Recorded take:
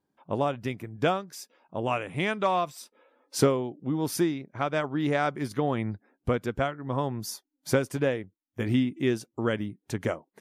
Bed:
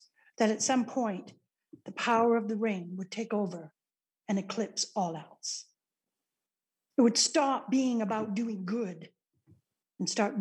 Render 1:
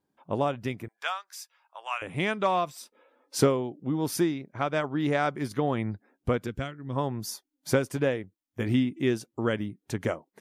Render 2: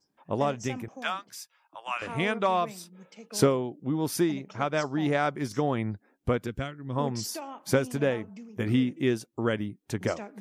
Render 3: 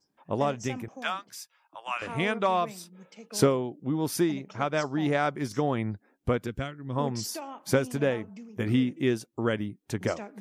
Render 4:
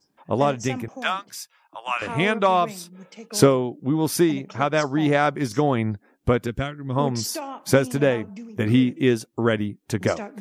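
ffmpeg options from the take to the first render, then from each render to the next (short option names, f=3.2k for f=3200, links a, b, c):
-filter_complex "[0:a]asettb=1/sr,asplit=3[a][b][c];[a]atrim=end=0.884[d];[b]atrim=start=0.88:end=2.02,asetpts=PTS-STARTPTS,afade=t=in:d=0.004:c=qsin,afade=t=out:st=1.136:d=0.004:c=qsin,highpass=f=930:w=0.5412,highpass=f=930:w=1.3066[e];[c]atrim=start=2.016[f];[d][e]acrossfade=d=0.004:c1=hsin:c2=qsin[g];[g][f]acrossfade=d=0.004:c1=qsin:c2=hsin,asettb=1/sr,asplit=3[h][i][j];[h]atrim=end=6.474[k];[i]atrim=start=6.47:end=6.96,asetpts=PTS-STARTPTS,afade=t=in:d=0.004:c=qsin,afade=t=out:st=0.486:d=0.004:c=qsin,equalizer=f=810:w=0.71:g=-12[l];[j]atrim=start=6.956[m];[k][l]acrossfade=d=0.004:c1=hsin:c2=qsin[n];[n][m]acrossfade=d=0.004:c1=qsin:c2=hsin"
-filter_complex "[1:a]volume=-12.5dB[a];[0:a][a]amix=inputs=2:normalize=0"
-af anull
-af "volume=6.5dB"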